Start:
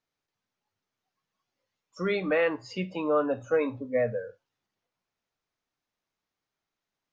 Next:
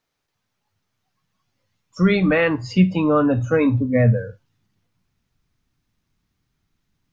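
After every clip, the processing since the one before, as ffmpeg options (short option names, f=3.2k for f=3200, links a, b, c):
-af "asubboost=boost=10:cutoff=180,volume=9dB"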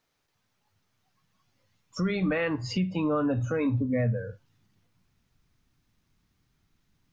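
-filter_complex "[0:a]asplit=2[a][b];[b]acompressor=threshold=-24dB:ratio=6,volume=-2dB[c];[a][c]amix=inputs=2:normalize=0,alimiter=limit=-15dB:level=0:latency=1:release=393,volume=-4dB"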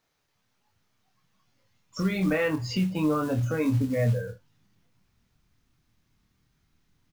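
-filter_complex "[0:a]acrusher=bits=6:mode=log:mix=0:aa=0.000001,asplit=2[a][b];[b]adelay=26,volume=-5dB[c];[a][c]amix=inputs=2:normalize=0"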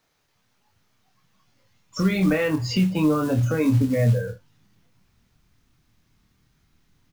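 -filter_complex "[0:a]acrossover=split=430|3000[a][b][c];[b]acompressor=threshold=-34dB:ratio=2[d];[a][d][c]amix=inputs=3:normalize=0,volume=5.5dB"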